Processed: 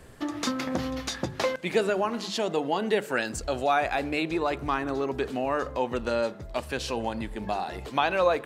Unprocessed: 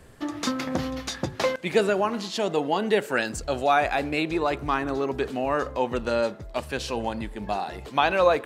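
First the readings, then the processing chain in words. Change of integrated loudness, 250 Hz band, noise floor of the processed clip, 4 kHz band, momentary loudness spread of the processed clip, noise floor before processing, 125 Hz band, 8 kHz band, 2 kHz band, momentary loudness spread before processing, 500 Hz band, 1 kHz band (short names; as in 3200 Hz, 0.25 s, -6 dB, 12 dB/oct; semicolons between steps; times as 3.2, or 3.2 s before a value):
-2.5 dB, -2.0 dB, -42 dBFS, -1.5 dB, 7 LU, -42 dBFS, -2.5 dB, -1.0 dB, -2.5 dB, 8 LU, -2.5 dB, -2.5 dB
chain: notches 50/100/150/200 Hz; in parallel at +0.5 dB: compressor, threshold -31 dBFS, peak gain reduction 16 dB; on the sum: gain -5 dB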